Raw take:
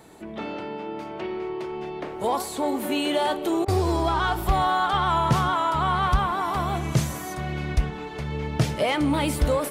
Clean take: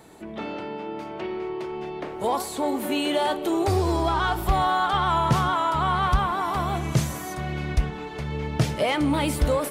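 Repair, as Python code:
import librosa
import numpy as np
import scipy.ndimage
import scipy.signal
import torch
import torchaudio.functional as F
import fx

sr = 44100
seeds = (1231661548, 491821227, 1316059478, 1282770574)

y = fx.fix_interpolate(x, sr, at_s=(3.65,), length_ms=30.0)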